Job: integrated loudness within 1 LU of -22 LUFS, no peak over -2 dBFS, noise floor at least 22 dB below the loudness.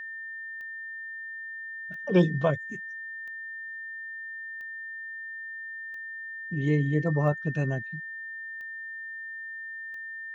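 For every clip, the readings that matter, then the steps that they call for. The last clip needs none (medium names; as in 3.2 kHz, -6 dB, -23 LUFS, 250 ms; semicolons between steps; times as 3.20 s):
clicks found 8; steady tone 1.8 kHz; tone level -36 dBFS; loudness -32.0 LUFS; peak level -10.5 dBFS; loudness target -22.0 LUFS
-> de-click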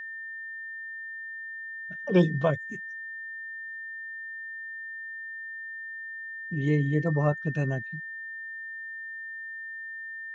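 clicks found 0; steady tone 1.8 kHz; tone level -36 dBFS
-> band-stop 1.8 kHz, Q 30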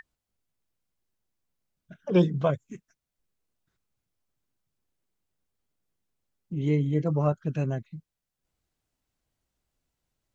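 steady tone not found; loudness -27.0 LUFS; peak level -10.0 dBFS; loudness target -22.0 LUFS
-> trim +5 dB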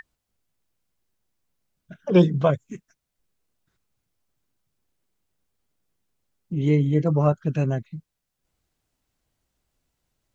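loudness -22.0 LUFS; peak level -5.0 dBFS; noise floor -81 dBFS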